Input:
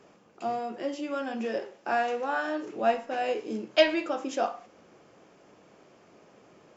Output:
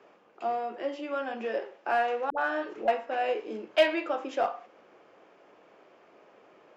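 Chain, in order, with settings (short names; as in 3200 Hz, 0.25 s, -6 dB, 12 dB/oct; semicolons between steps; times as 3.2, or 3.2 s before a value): three-band isolator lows -15 dB, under 320 Hz, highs -16 dB, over 3700 Hz; in parallel at -5 dB: hard clip -23 dBFS, distortion -9 dB; 2.3–2.88 on the sum: dispersion highs, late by 81 ms, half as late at 520 Hz; gain -2.5 dB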